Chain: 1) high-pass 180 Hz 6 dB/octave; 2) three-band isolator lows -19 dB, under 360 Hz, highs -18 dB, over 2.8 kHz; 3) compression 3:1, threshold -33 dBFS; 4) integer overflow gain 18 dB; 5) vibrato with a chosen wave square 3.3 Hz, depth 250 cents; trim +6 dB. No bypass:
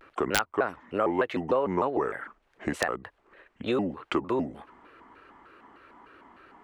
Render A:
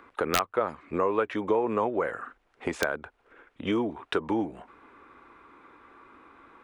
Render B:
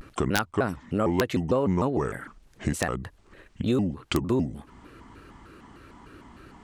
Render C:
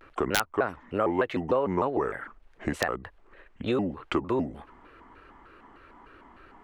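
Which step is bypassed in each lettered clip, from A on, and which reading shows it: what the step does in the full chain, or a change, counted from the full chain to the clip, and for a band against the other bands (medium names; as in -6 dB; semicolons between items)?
5, crest factor change -2.0 dB; 2, 125 Hz band +11.0 dB; 1, 125 Hz band +3.0 dB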